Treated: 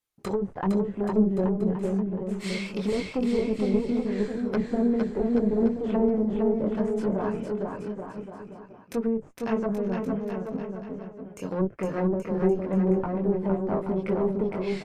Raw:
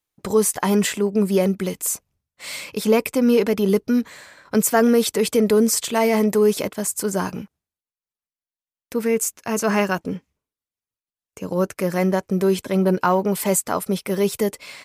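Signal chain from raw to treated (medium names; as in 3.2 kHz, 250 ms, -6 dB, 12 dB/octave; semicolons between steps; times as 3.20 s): chorus voices 4, 0.22 Hz, delay 23 ms, depth 4.1 ms; one-sided clip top -26.5 dBFS; low-pass that closes with the level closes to 410 Hz, closed at -21.5 dBFS; bouncing-ball echo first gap 460 ms, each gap 0.8×, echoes 5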